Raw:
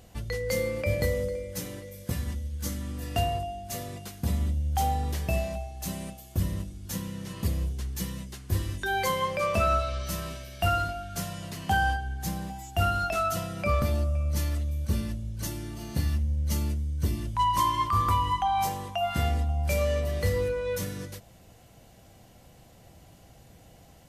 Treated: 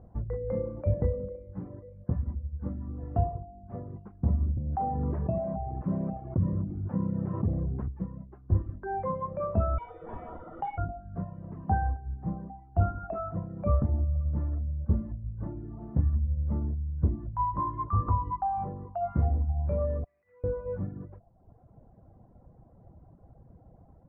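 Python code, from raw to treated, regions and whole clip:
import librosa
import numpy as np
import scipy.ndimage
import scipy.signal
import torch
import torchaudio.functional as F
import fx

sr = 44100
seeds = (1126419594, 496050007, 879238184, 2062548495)

y = fx.chain(x, sr, fx.highpass(hz=92.0, slope=24),
    fx.env_flatten(amount_pct=70), at=(4.57, 7.88))
y = fx.chain(y, sr, fx.high_shelf(hz=2700.0, db=10.5),
    fx.freq_invert(carrier_hz=3600),
    fx.env_flatten(amount_pct=50), at=(9.78, 10.78))
y = fx.chain(y, sr, fx.bandpass_q(hz=2400.0, q=5.1),
    fx.over_compress(threshold_db=-47.0, ratio=-0.5), at=(20.04, 20.44))
y = fx.dereverb_blind(y, sr, rt60_s=1.0)
y = scipy.signal.sosfilt(scipy.signal.cheby2(4, 60, 3800.0, 'lowpass', fs=sr, output='sos'), y)
y = fx.low_shelf(y, sr, hz=330.0, db=6.5)
y = y * 10.0 ** (-3.0 / 20.0)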